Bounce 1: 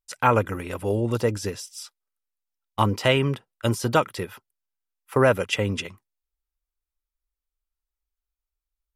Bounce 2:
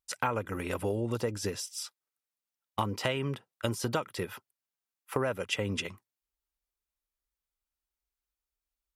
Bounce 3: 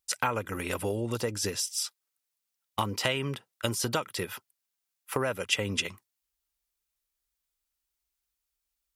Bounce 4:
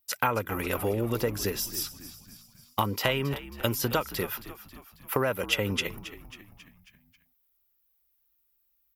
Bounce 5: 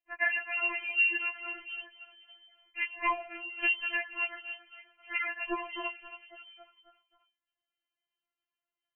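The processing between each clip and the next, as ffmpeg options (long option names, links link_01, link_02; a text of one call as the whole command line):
ffmpeg -i in.wav -af "highpass=frequency=77:poles=1,acompressor=threshold=-28dB:ratio=5" out.wav
ffmpeg -i in.wav -af "highshelf=frequency=2100:gain=8" out.wav
ffmpeg -i in.wav -filter_complex "[0:a]aexciter=amount=15.3:drive=2.4:freq=12000,aemphasis=mode=reproduction:type=cd,asplit=6[link_01][link_02][link_03][link_04][link_05][link_06];[link_02]adelay=271,afreqshift=-70,volume=-14.5dB[link_07];[link_03]adelay=542,afreqshift=-140,volume=-19.7dB[link_08];[link_04]adelay=813,afreqshift=-210,volume=-24.9dB[link_09];[link_05]adelay=1084,afreqshift=-280,volume=-30.1dB[link_10];[link_06]adelay=1355,afreqshift=-350,volume=-35.3dB[link_11];[link_01][link_07][link_08][link_09][link_10][link_11]amix=inputs=6:normalize=0,volume=2.5dB" out.wav
ffmpeg -i in.wav -af "lowpass=frequency=2600:width_type=q:width=0.5098,lowpass=frequency=2600:width_type=q:width=0.6013,lowpass=frequency=2600:width_type=q:width=0.9,lowpass=frequency=2600:width_type=q:width=2.563,afreqshift=-3100,afftfilt=real='re*4*eq(mod(b,16),0)':imag='im*4*eq(mod(b,16),0)':win_size=2048:overlap=0.75,volume=1dB" out.wav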